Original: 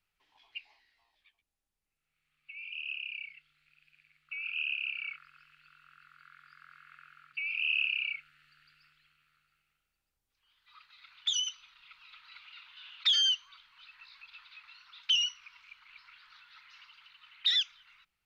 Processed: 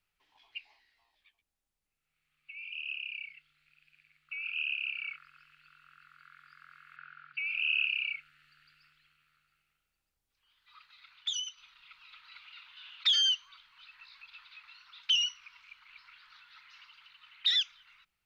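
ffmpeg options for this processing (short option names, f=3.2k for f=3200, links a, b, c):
-filter_complex "[0:a]asettb=1/sr,asplit=3[a][b][c];[a]atrim=end=6.964[d];[b]atrim=start=6.96:end=7.86,asetpts=PTS-STARTPTS,afade=t=in:d=0.004:c=qsin,afade=t=out:st=0.896:d=0.004:c=qsin,highpass=140,equalizer=f=140:t=q:w=4:g=8,equalizer=f=580:t=q:w=4:g=-6,equalizer=f=1.5k:t=q:w=4:g=8,lowpass=f=4.9k:w=0.5412,lowpass=f=4.9k:w=1.3066[e];[c]atrim=start=7.856[f];[d][e]acrossfade=d=0.004:c1=hsin:c2=qsin[g];[g][f]acrossfade=d=0.004:c1=qsin:c2=hsin,asplit=2[h][i];[h]atrim=end=11.57,asetpts=PTS-STARTPTS,afade=t=out:st=10.91:d=0.66:silence=0.446684[j];[i]atrim=start=11.57,asetpts=PTS-STARTPTS,afade=t=in:d=0.004:c=hsin:silence=0.446684[k];[j][k]concat=n=2:v=0:a=1"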